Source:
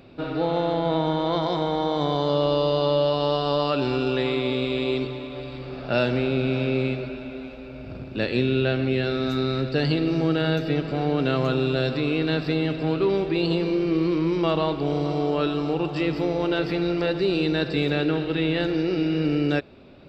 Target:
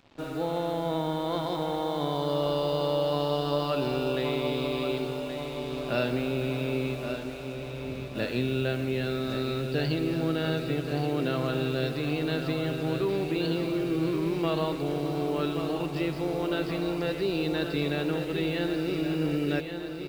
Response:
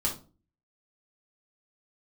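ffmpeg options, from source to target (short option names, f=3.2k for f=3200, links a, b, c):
-filter_complex "[0:a]acrusher=bits=6:mix=0:aa=0.5,asplit=2[a][b];[b]aecho=0:1:1125|2250|3375|4500|5625|6750|7875:0.398|0.235|0.139|0.0818|0.0482|0.0285|0.0168[c];[a][c]amix=inputs=2:normalize=0,volume=-6dB"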